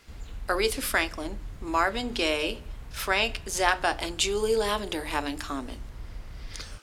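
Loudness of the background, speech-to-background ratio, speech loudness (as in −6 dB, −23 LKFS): −44.5 LKFS, 17.0 dB, −27.5 LKFS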